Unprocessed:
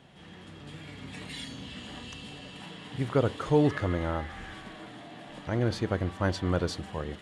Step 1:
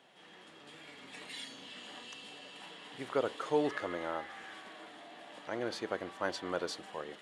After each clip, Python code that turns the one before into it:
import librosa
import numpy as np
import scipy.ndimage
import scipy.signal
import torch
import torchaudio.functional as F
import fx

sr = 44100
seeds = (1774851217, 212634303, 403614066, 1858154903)

y = scipy.signal.sosfilt(scipy.signal.butter(2, 400.0, 'highpass', fs=sr, output='sos'), x)
y = F.gain(torch.from_numpy(y), -3.5).numpy()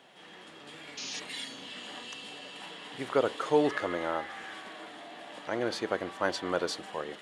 y = fx.spec_paint(x, sr, seeds[0], shape='noise', start_s=0.97, length_s=0.23, low_hz=2300.0, high_hz=6900.0, level_db=-45.0)
y = F.gain(torch.from_numpy(y), 5.5).numpy()